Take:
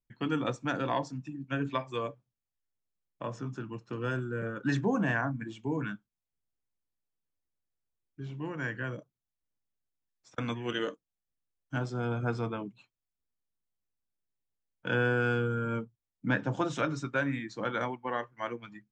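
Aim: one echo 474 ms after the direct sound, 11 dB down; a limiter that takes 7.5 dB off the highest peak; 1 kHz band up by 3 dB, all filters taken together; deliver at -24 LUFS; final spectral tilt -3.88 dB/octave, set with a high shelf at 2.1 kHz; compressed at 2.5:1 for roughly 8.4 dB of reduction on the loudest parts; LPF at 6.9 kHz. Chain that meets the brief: low-pass 6.9 kHz; peaking EQ 1 kHz +5 dB; treble shelf 2.1 kHz -4 dB; compression 2.5:1, threshold -36 dBFS; peak limiter -27.5 dBFS; delay 474 ms -11 dB; trim +16 dB

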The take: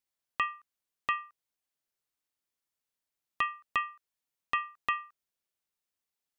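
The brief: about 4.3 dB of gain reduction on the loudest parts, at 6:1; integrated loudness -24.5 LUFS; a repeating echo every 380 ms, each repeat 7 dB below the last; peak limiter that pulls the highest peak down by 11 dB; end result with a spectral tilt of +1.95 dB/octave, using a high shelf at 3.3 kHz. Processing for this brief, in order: treble shelf 3.3 kHz -7.5 dB; compression 6:1, threshold -30 dBFS; peak limiter -28.5 dBFS; feedback delay 380 ms, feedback 45%, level -7 dB; trim +19 dB

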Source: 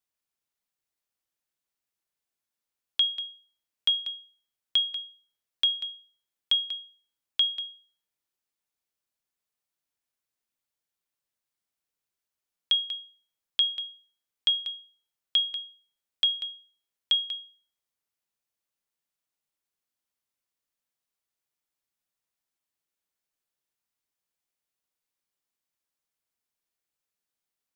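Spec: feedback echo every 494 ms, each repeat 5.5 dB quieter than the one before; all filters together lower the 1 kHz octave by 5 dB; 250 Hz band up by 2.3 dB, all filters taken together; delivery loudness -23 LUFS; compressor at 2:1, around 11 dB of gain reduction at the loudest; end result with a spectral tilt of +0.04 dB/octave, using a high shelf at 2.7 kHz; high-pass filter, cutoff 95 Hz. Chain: high-pass 95 Hz; peaking EQ 250 Hz +3.5 dB; peaking EQ 1 kHz -8.5 dB; treble shelf 2.7 kHz +8 dB; compression 2:1, threshold -36 dBFS; feedback delay 494 ms, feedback 53%, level -5.5 dB; trim +10 dB

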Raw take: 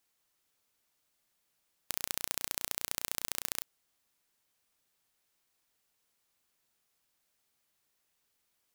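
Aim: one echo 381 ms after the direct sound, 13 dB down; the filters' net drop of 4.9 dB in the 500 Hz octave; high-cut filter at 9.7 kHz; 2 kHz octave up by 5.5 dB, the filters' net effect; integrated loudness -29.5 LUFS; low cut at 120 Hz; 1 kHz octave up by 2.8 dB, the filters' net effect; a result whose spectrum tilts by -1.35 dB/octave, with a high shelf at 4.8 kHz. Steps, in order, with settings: high-pass 120 Hz; low-pass 9.7 kHz; peaking EQ 500 Hz -8 dB; peaking EQ 1 kHz +3.5 dB; peaking EQ 2 kHz +7.5 dB; treble shelf 4.8 kHz -7 dB; delay 381 ms -13 dB; trim +10.5 dB

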